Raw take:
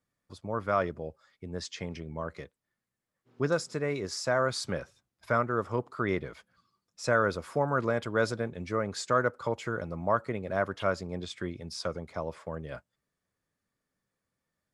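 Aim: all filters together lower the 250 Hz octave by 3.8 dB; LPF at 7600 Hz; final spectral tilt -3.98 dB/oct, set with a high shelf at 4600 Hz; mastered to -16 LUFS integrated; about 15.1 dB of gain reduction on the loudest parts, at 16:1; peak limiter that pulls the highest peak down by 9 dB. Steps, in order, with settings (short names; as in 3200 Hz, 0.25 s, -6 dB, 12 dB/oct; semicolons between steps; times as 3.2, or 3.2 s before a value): LPF 7600 Hz; bell 250 Hz -5.5 dB; high shelf 4600 Hz +4.5 dB; compressor 16:1, threshold -36 dBFS; gain +27.5 dB; limiter -3 dBFS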